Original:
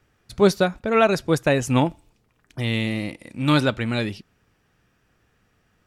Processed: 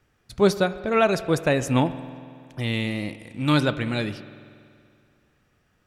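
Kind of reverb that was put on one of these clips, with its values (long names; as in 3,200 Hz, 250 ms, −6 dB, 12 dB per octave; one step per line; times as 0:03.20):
spring reverb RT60 2.3 s, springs 47 ms, chirp 25 ms, DRR 13.5 dB
level −2 dB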